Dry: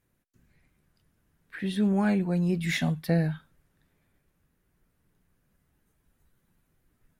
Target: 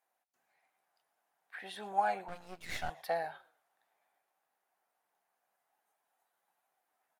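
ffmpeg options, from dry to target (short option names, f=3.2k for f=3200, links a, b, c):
-filter_complex "[0:a]asplit=2[a][b];[b]asplit=3[c][d][e];[c]adelay=117,afreqshift=-66,volume=-22dB[f];[d]adelay=234,afreqshift=-132,volume=-30.9dB[g];[e]adelay=351,afreqshift=-198,volume=-39.7dB[h];[f][g][h]amix=inputs=3:normalize=0[i];[a][i]amix=inputs=2:normalize=0,aeval=exprs='0.251*(cos(1*acos(clip(val(0)/0.251,-1,1)))-cos(1*PI/2))+0.0224*(cos(4*acos(clip(val(0)/0.251,-1,1)))-cos(4*PI/2))':c=same,highpass=f=760:t=q:w=5.8,asettb=1/sr,asplit=3[j][k][l];[j]atrim=end=2.284[m];[k]atrim=start=2.28:end=2.9,asetpts=PTS-STARTPTS,afade=t=in:d=0.004:c=qsin,afade=t=out:st=0.616:d=0.004:c=qsin,aeval=exprs='max(val(0),0)':c=same[n];[l]atrim=start=2.896[o];[m][n]acrossfade=d=0.004:c1=hsin:c2=qsin[p];[p][o]acrossfade=d=0.004:c1=qsin:c2=hsin,volume=-7dB"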